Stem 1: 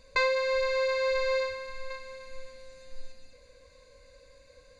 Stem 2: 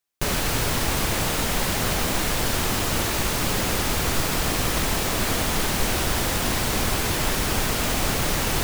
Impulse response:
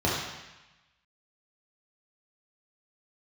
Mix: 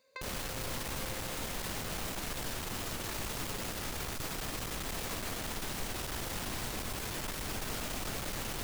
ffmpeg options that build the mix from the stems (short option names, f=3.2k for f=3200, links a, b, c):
-filter_complex "[0:a]highpass=270,acompressor=threshold=-29dB:ratio=6,volume=-11.5dB[a];[1:a]bandreject=f=82.83:t=h:w=4,bandreject=f=165.66:t=h:w=4,bandreject=f=248.49:t=h:w=4,bandreject=f=331.32:t=h:w=4,bandreject=f=414.15:t=h:w=4,bandreject=f=496.98:t=h:w=4,bandreject=f=579.81:t=h:w=4,bandreject=f=662.64:t=h:w=4,bandreject=f=745.47:t=h:w=4,bandreject=f=828.3:t=h:w=4,bandreject=f=911.13:t=h:w=4,bandreject=f=993.96:t=h:w=4,bandreject=f=1.07679k:t=h:w=4,bandreject=f=1.15962k:t=h:w=4,bandreject=f=1.24245k:t=h:w=4,bandreject=f=1.32528k:t=h:w=4,bandreject=f=1.40811k:t=h:w=4,bandreject=f=1.49094k:t=h:w=4,bandreject=f=1.57377k:t=h:w=4,bandreject=f=1.6566k:t=h:w=4,bandreject=f=1.73943k:t=h:w=4,bandreject=f=1.82226k:t=h:w=4,bandreject=f=1.90509k:t=h:w=4,bandreject=f=1.98792k:t=h:w=4,bandreject=f=2.07075k:t=h:w=4,bandreject=f=2.15358k:t=h:w=4,bandreject=f=2.23641k:t=h:w=4,bandreject=f=2.31924k:t=h:w=4,bandreject=f=2.40207k:t=h:w=4,bandreject=f=2.4849k:t=h:w=4,alimiter=limit=-19dB:level=0:latency=1:release=126,volume=-1.5dB[b];[a][b]amix=inputs=2:normalize=0,aeval=exprs='clip(val(0),-1,0.02)':c=same,alimiter=level_in=3dB:limit=-24dB:level=0:latency=1:release=103,volume=-3dB"